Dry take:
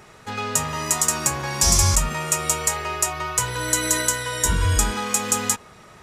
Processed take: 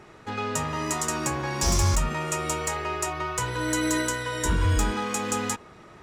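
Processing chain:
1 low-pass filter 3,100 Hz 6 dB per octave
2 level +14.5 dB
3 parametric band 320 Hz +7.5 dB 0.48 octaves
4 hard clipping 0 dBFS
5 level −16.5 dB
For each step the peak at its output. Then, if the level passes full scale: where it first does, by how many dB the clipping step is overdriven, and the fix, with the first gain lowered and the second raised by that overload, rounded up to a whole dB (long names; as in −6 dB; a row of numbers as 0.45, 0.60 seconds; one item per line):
−7.0, +7.5, +8.0, 0.0, −16.5 dBFS
step 2, 8.0 dB
step 2 +6.5 dB, step 5 −8.5 dB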